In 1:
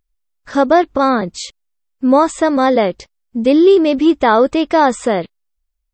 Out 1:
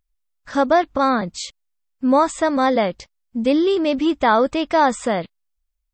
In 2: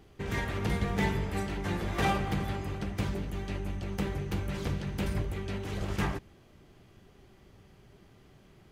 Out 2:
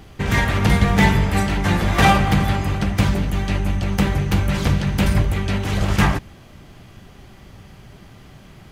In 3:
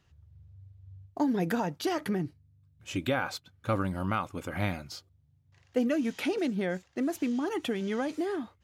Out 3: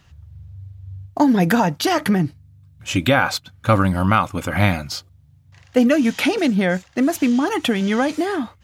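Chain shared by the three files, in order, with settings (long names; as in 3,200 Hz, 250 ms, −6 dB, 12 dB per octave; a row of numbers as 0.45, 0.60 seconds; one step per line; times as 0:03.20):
parametric band 390 Hz −7 dB 0.69 octaves
loudness normalisation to −19 LKFS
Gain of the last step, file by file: −3.0, +15.0, +14.5 decibels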